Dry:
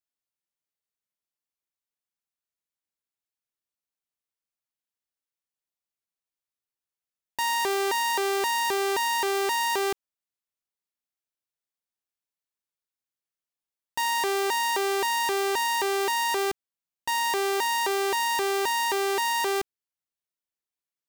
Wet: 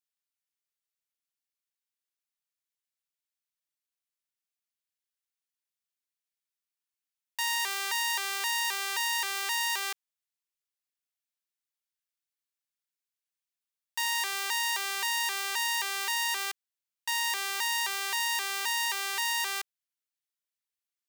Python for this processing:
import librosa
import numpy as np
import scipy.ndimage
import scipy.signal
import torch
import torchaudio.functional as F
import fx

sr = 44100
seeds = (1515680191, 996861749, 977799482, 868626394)

y = scipy.signal.sosfilt(scipy.signal.butter(2, 1500.0, 'highpass', fs=sr, output='sos'), x)